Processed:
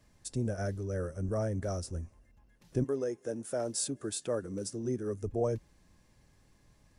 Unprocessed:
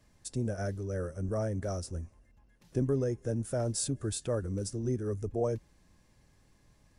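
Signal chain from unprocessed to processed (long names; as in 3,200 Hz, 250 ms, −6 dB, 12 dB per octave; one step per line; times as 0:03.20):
0:02.83–0:05.22: high-pass filter 350 Hz → 140 Hz 12 dB per octave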